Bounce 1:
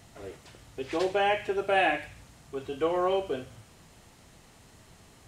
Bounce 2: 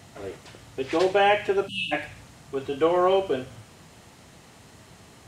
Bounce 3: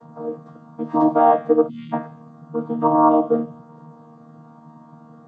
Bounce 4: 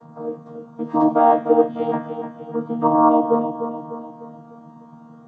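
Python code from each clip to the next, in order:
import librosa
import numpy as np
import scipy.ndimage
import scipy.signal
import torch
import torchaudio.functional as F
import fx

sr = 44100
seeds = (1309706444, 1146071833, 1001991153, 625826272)

y1 = scipy.signal.sosfilt(scipy.signal.butter(2, 77.0, 'highpass', fs=sr, output='sos'), x)
y1 = fx.spec_erase(y1, sr, start_s=1.68, length_s=0.24, low_hz=280.0, high_hz=2600.0)
y1 = fx.high_shelf(y1, sr, hz=7600.0, db=-4.0)
y1 = y1 * librosa.db_to_amplitude(6.0)
y2 = fx.chord_vocoder(y1, sr, chord='bare fifth', root=51)
y2 = fx.high_shelf_res(y2, sr, hz=1600.0, db=-13.0, q=3.0)
y2 = fx.hpss(y2, sr, part='harmonic', gain_db=5)
y3 = fx.echo_feedback(y2, sr, ms=300, feedback_pct=47, wet_db=-9.0)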